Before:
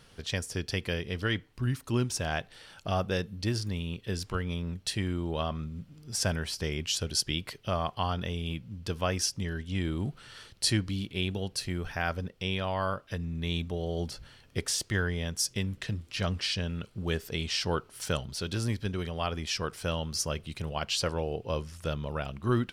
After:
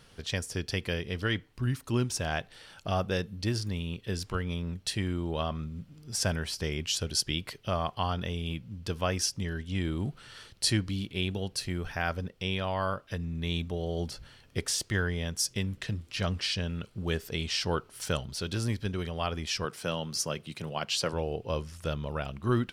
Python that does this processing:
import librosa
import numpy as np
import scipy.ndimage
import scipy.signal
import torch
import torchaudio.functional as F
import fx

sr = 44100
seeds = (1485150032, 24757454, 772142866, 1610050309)

y = fx.highpass(x, sr, hz=120.0, slope=24, at=(19.65, 21.13))